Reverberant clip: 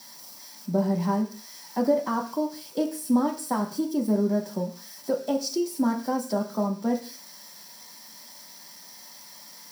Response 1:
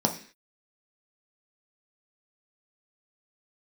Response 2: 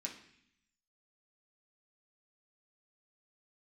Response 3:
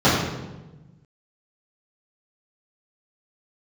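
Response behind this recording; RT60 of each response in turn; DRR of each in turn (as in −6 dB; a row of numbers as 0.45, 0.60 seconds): 1; 0.45, 0.65, 1.1 seconds; 2.0, −2.0, −12.0 decibels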